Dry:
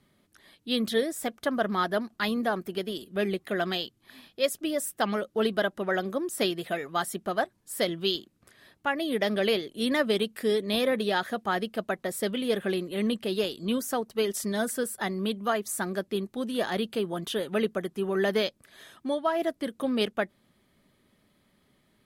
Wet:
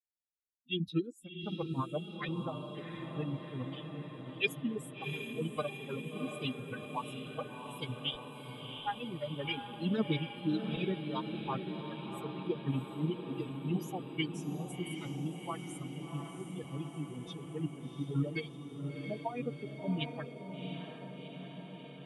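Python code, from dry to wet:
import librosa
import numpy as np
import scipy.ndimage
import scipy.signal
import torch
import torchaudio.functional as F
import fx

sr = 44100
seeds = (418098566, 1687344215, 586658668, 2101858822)

y = fx.bin_expand(x, sr, power=3.0)
y = fx.rotary_switch(y, sr, hz=0.85, then_hz=7.5, switch_at_s=17.77)
y = fx.pitch_keep_formants(y, sr, semitones=-5.5)
y = fx.bass_treble(y, sr, bass_db=4, treble_db=-7)
y = fx.echo_diffused(y, sr, ms=714, feedback_pct=70, wet_db=-6.5)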